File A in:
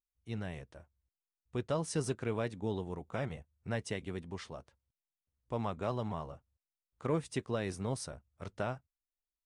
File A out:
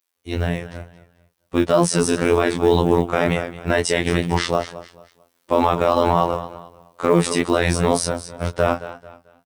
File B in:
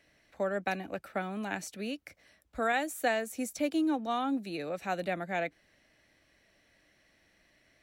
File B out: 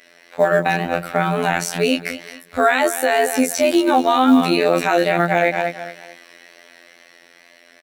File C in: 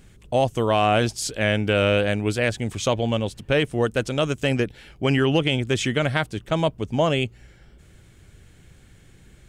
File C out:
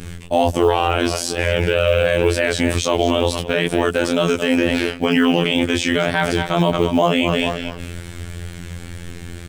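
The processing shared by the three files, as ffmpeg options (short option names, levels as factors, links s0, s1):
-filter_complex "[0:a]acrossover=split=260[s0][s1];[s0]agate=range=0.0224:threshold=0.00112:ratio=3:detection=peak[s2];[s1]dynaudnorm=f=350:g=13:m=2.82[s3];[s2][s3]amix=inputs=2:normalize=0,aecho=1:1:220|440|660:0.158|0.0491|0.0152,adynamicequalizer=threshold=0.0126:dfrequency=860:dqfactor=7.9:tfrequency=860:tqfactor=7.9:attack=5:release=100:ratio=0.375:range=1.5:mode=boostabove:tftype=bell,flanger=delay=18:depth=7.9:speed=2.1,areverse,acompressor=threshold=0.0398:ratio=16,areverse,equalizer=f=6900:w=7.7:g=-4.5,afftfilt=real='hypot(re,im)*cos(PI*b)':imag='0':win_size=2048:overlap=0.75,acrusher=bits=9:mode=log:mix=0:aa=0.000001,alimiter=level_in=18.8:limit=0.891:release=50:level=0:latency=1,volume=0.891"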